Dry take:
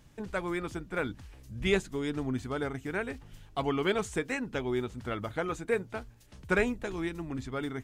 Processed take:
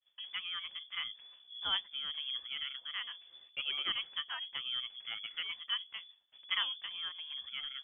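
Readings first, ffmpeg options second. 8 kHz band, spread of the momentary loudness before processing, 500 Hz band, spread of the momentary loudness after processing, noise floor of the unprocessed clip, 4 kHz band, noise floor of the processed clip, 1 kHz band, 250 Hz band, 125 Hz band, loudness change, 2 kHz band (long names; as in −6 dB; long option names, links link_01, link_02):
below −30 dB, 11 LU, −33.0 dB, 10 LU, −55 dBFS, +11.0 dB, −64 dBFS, −10.5 dB, −33.5 dB, below −30 dB, −4.5 dB, −7.0 dB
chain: -af "agate=range=-33dB:threshold=-49dB:ratio=3:detection=peak,lowpass=frequency=3000:width_type=q:width=0.5098,lowpass=frequency=3000:width_type=q:width=0.6013,lowpass=frequency=3000:width_type=q:width=0.9,lowpass=frequency=3000:width_type=q:width=2.563,afreqshift=-3500,volume=-7.5dB"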